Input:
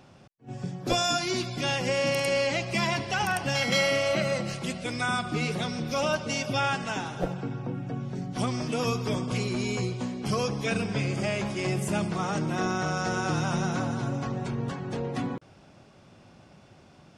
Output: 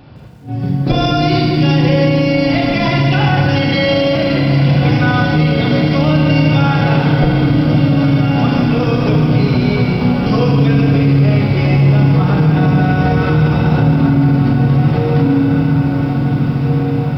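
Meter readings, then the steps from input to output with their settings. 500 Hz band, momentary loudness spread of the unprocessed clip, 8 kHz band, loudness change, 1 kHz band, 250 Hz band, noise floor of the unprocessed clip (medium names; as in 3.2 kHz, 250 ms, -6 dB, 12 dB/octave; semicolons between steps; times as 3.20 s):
+12.5 dB, 8 LU, no reading, +16.0 dB, +11.5 dB, +19.0 dB, -55 dBFS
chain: bass shelf 220 Hz +11 dB; echo that smears into a reverb 1730 ms, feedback 55%, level -7.5 dB; FDN reverb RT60 1.9 s, low-frequency decay 1.4×, high-frequency decay 0.65×, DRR -1.5 dB; resampled via 11.025 kHz; loudness maximiser +11.5 dB; bit-crushed delay 158 ms, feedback 55%, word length 7-bit, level -10 dB; trim -4 dB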